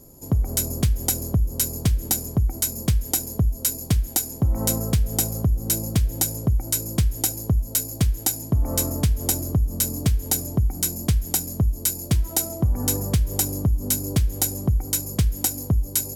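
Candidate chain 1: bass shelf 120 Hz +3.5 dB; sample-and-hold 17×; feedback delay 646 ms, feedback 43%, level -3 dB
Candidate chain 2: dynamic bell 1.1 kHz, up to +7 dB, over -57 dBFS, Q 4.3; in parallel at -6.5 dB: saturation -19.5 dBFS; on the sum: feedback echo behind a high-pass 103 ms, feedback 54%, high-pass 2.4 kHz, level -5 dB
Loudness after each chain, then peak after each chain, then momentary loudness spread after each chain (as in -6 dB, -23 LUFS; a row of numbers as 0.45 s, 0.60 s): -20.5 LUFS, -20.0 LUFS; -6.0 dBFS, -4.5 dBFS; 2 LU, 2 LU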